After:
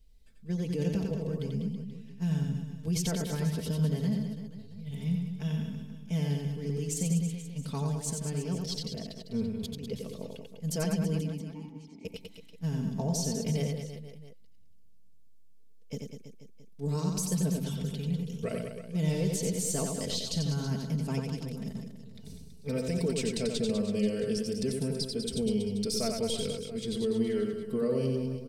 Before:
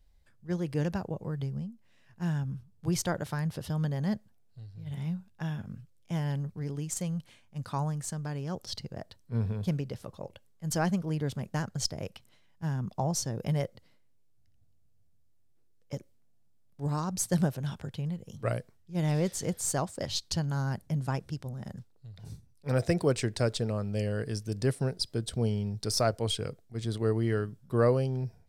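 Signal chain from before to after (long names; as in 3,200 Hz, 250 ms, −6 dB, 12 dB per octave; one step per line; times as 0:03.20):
flat-topped bell 1,100 Hz −10.5 dB
comb filter 4.5 ms, depth 82%
brickwall limiter −23.5 dBFS, peak gain reduction 10.5 dB
0:09.43–0:09.84: compressor whose output falls as the input rises −42 dBFS, ratio −1
0:11.21–0:12.05: formant filter u
reverse bouncing-ball delay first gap 90 ms, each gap 1.2×, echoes 5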